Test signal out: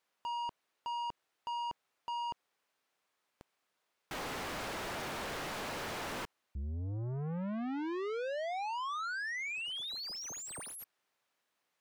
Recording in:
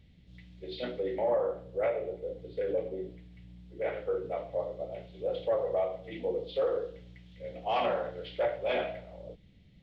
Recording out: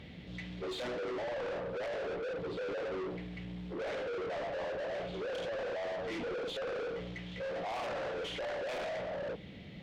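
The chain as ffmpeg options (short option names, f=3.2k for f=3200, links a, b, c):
-filter_complex "[0:a]asplit=2[a][b];[b]highpass=f=720:p=1,volume=34dB,asoftclip=type=tanh:threshold=-19.5dB[c];[a][c]amix=inputs=2:normalize=0,lowpass=f=1.2k:p=1,volume=-6dB,asoftclip=type=tanh:threshold=-32.5dB,volume=-3.5dB"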